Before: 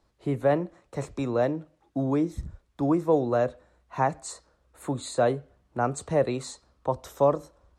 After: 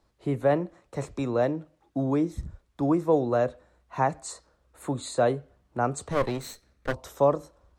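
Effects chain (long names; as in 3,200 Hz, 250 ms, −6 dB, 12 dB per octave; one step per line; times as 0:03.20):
0:06.11–0:06.94: lower of the sound and its delayed copy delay 0.49 ms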